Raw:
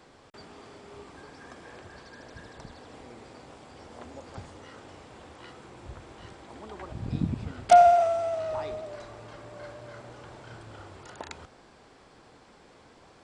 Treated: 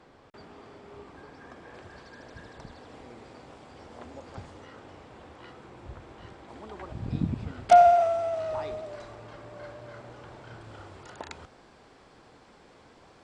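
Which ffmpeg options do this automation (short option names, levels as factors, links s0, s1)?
-af "asetnsamples=n=441:p=0,asendcmd='1.74 lowpass f 5100;4.65 lowpass f 3100;6.48 lowpass f 4900;8.36 lowpass f 7600;9.15 lowpass f 4400;10.64 lowpass f 7700',lowpass=f=2500:p=1"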